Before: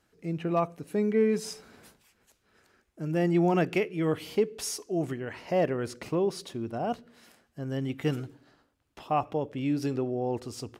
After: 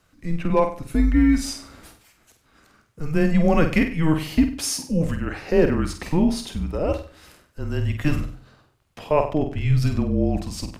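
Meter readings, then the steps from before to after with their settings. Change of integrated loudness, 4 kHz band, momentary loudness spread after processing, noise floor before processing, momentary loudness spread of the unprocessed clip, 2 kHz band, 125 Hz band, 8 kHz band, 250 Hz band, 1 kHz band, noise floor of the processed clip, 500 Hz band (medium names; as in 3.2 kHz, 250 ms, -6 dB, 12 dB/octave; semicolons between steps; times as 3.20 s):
+7.5 dB, +8.0 dB, 10 LU, -72 dBFS, 12 LU, +8.5 dB, +10.0 dB, +8.0 dB, +8.5 dB, +3.5 dB, -63 dBFS, +4.0 dB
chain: flutter echo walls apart 8.3 m, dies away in 0.39 s; frequency shift -160 Hz; trim +7.5 dB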